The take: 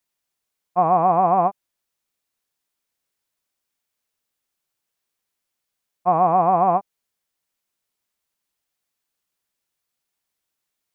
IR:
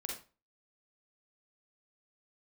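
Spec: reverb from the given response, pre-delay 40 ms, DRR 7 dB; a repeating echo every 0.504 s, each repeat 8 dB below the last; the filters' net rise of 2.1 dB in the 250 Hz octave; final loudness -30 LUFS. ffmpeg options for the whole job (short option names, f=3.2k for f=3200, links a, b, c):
-filter_complex "[0:a]equalizer=f=250:t=o:g=4,aecho=1:1:504|1008|1512|2016|2520:0.398|0.159|0.0637|0.0255|0.0102,asplit=2[a][b];[1:a]atrim=start_sample=2205,adelay=40[c];[b][c]afir=irnorm=-1:irlink=0,volume=-7dB[d];[a][d]amix=inputs=2:normalize=0,volume=-10.5dB"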